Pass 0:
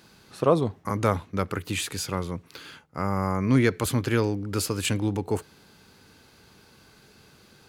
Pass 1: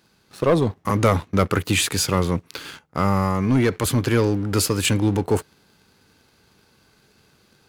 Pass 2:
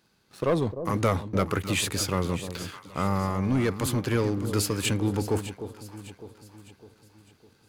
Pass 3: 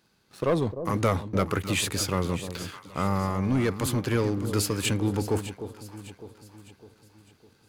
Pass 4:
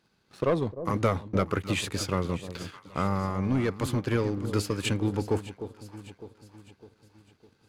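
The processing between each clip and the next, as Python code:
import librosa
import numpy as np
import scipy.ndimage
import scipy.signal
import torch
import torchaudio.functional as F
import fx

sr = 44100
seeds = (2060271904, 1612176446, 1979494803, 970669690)

y1 = fx.leveller(x, sr, passes=2)
y1 = fx.rider(y1, sr, range_db=10, speed_s=0.5)
y2 = fx.echo_alternate(y1, sr, ms=303, hz=860.0, feedback_pct=66, wet_db=-10)
y2 = F.gain(torch.from_numpy(y2), -6.5).numpy()
y3 = y2
y4 = fx.high_shelf(y3, sr, hz=8600.0, db=-11.0)
y4 = fx.transient(y4, sr, attack_db=3, sustain_db=-4)
y4 = F.gain(torch.from_numpy(y4), -2.0).numpy()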